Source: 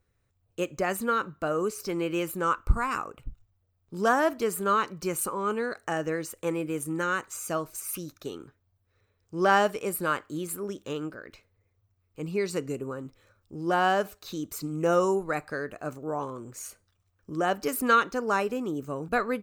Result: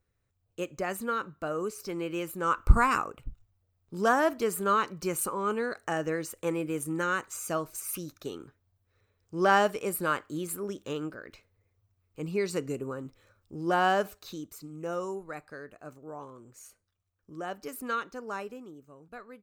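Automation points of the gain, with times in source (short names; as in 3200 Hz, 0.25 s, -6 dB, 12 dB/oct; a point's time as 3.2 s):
2.37 s -4.5 dB
2.77 s +6 dB
3.23 s -1 dB
14.18 s -1 dB
14.6 s -10.5 dB
18.46 s -10.5 dB
18.86 s -19 dB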